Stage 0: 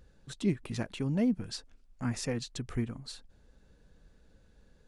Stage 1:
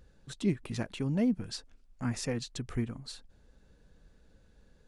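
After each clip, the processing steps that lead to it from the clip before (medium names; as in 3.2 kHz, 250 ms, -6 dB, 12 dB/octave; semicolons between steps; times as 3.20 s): no audible change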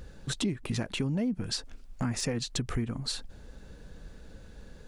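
in parallel at +2 dB: peak limiter -28.5 dBFS, peak gain reduction 11 dB; on the sum: compression 4:1, threshold -35 dBFS, peak gain reduction 12.5 dB; hard clipper -26.5 dBFS, distortion -43 dB; trim +6 dB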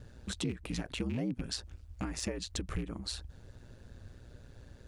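rattle on loud lows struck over -31 dBFS, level -34 dBFS; ring modulator 60 Hz; trim -2 dB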